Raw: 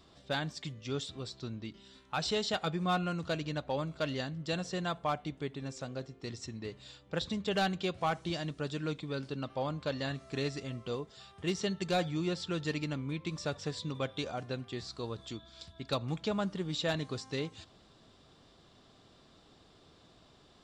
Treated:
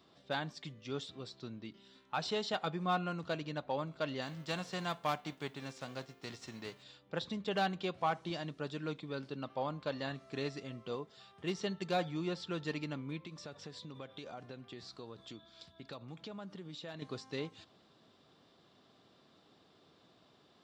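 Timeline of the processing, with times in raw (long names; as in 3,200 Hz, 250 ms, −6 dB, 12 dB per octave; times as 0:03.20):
0:04.21–0:06.82: spectral envelope flattened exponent 0.6
0:13.25–0:17.02: downward compressor, threshold −39 dBFS
whole clip: dynamic equaliser 940 Hz, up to +4 dB, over −46 dBFS, Q 1.7; high-pass filter 140 Hz 12 dB per octave; parametric band 8,500 Hz −7.5 dB 1 octave; level −3.5 dB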